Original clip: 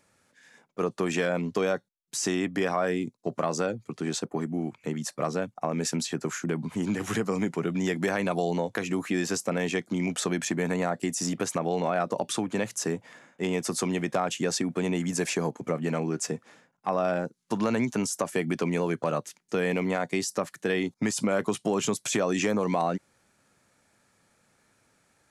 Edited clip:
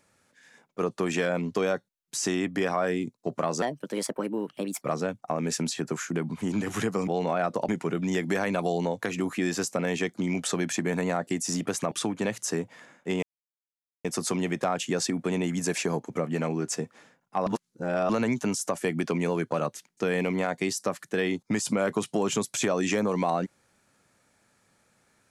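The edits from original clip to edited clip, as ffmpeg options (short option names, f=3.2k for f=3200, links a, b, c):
-filter_complex "[0:a]asplit=9[a][b][c][d][e][f][g][h][i];[a]atrim=end=3.624[j];[b]atrim=start=3.62:end=5.15,asetpts=PTS-STARTPTS,asetrate=56448,aresample=44100,atrim=end_sample=52713,asetpts=PTS-STARTPTS[k];[c]atrim=start=5.146:end=7.412[l];[d]atrim=start=11.638:end=12.252[m];[e]atrim=start=7.408:end=11.642[n];[f]atrim=start=12.248:end=13.56,asetpts=PTS-STARTPTS,afade=t=out:st=1.308:d=0.004:c=hsin,apad=pad_dur=0.82[o];[g]atrim=start=13.56:end=16.982,asetpts=PTS-STARTPTS,afade=t=in:d=0.004:c=hsin[p];[h]atrim=start=16.978:end=17.612,asetpts=PTS-STARTPTS,areverse[q];[i]atrim=start=17.608[r];[j][k]acrossfade=d=0.004:c1=hsin:c2=hsin[s];[s][l]acrossfade=d=0.004:c1=hsin:c2=hsin[t];[t][m]acrossfade=d=0.004:c1=hsin:c2=hsin[u];[u][n]acrossfade=d=0.004:c1=hsin:c2=hsin[v];[o][p]concat=n=2:v=0:a=1[w];[v][w]acrossfade=d=0.004:c1=hsin:c2=hsin[x];[x][q]acrossfade=d=0.004:c1=hsin:c2=hsin[y];[y][r]acrossfade=d=0.004:c1=hsin:c2=hsin"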